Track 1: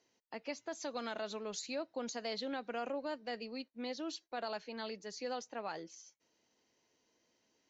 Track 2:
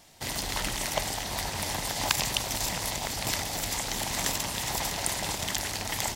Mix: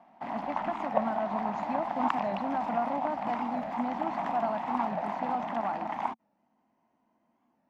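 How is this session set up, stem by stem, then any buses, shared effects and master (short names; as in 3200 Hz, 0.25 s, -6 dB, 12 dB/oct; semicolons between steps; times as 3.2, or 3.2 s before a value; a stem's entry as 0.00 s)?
+1.5 dB, 0.00 s, no send, dry
-3.5 dB, 0.00 s, no send, three-band isolator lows -23 dB, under 210 Hz, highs -14 dB, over 4500 Hz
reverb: off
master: EQ curve 120 Hz 0 dB, 220 Hz +12 dB, 460 Hz -9 dB, 710 Hz +11 dB, 1100 Hz +7 dB, 1700 Hz -4 dB, 2500 Hz -8 dB, 3800 Hz -20 dB, 6400 Hz -24 dB, 9100 Hz -27 dB; record warp 45 rpm, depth 160 cents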